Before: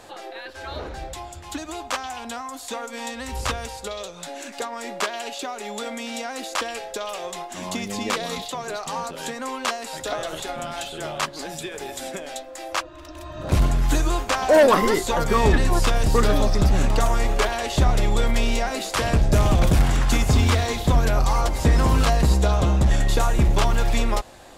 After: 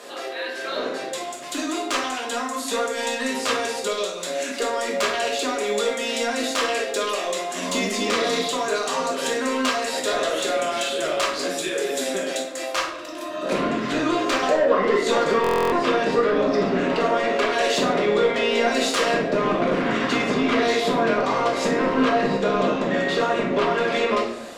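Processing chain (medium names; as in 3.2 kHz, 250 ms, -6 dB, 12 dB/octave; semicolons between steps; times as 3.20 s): low-pass that closes with the level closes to 2.2 kHz, closed at -13.5 dBFS; high-pass 250 Hz 24 dB/octave; peaking EQ 830 Hz -13.5 dB 0.24 oct; compression 6:1, threshold -23 dBFS, peak gain reduction 11 dB; saturation -21 dBFS, distortion -17 dB; simulated room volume 180 m³, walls mixed, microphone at 1.3 m; buffer glitch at 15.42 s, samples 1024, times 12; trim +4 dB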